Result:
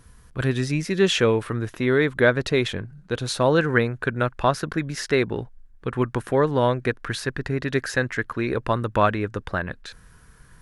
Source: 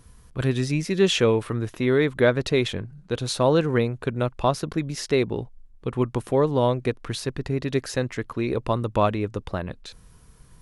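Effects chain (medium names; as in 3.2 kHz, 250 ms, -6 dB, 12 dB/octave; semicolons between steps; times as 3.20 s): peaking EQ 1.6 kHz +6 dB 0.65 oct, from 3.58 s +12.5 dB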